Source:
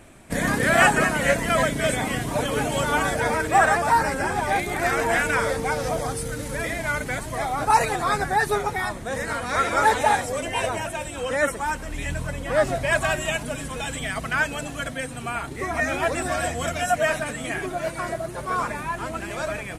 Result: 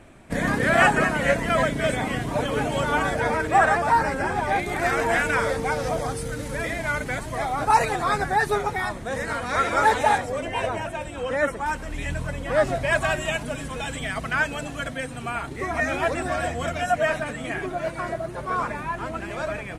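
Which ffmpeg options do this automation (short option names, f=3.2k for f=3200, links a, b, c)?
-af "asetnsamples=n=441:p=0,asendcmd='4.66 lowpass f 6000;10.18 lowpass f 2400;11.66 lowpass f 5400;16.14 lowpass f 3100',lowpass=f=3.4k:p=1"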